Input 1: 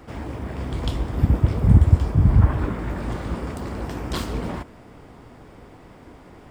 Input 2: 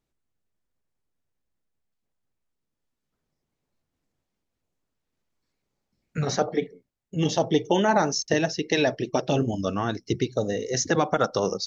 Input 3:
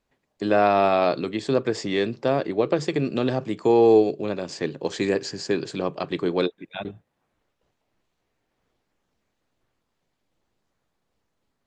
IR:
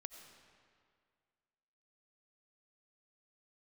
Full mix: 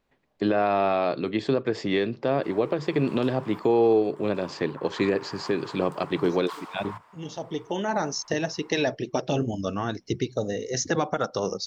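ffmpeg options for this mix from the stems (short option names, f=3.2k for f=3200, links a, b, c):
-filter_complex "[0:a]acompressor=threshold=-17dB:ratio=6,highpass=f=1k:t=q:w=3.4,adelay=2350,volume=-9.5dB[a];[1:a]volume=-2dB[b];[2:a]lowpass=4.1k,volume=2.5dB,asplit=2[c][d];[d]apad=whole_len=514453[e];[b][e]sidechaincompress=threshold=-34dB:ratio=8:attack=16:release=1420[f];[a][f][c]amix=inputs=3:normalize=0,alimiter=limit=-13dB:level=0:latency=1:release=320"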